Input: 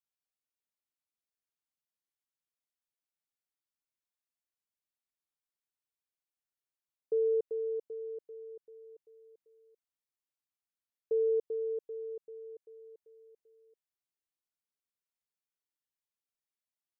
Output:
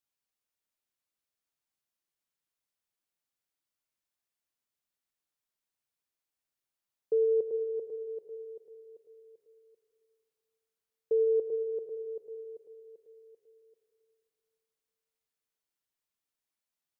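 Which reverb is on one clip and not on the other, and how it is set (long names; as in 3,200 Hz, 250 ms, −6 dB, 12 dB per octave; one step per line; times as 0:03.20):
comb and all-pass reverb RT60 2.6 s, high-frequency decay 0.8×, pre-delay 35 ms, DRR 8.5 dB
level +3 dB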